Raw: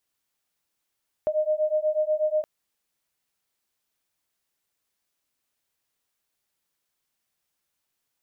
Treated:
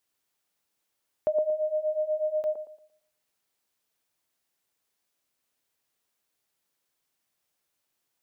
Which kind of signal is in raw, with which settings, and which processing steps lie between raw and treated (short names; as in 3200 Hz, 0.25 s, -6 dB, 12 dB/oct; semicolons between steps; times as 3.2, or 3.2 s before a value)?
beating tones 611 Hz, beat 8.2 Hz, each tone -24.5 dBFS 1.17 s
low shelf 63 Hz -6 dB; on a send: band-limited delay 0.115 s, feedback 30%, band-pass 450 Hz, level -3 dB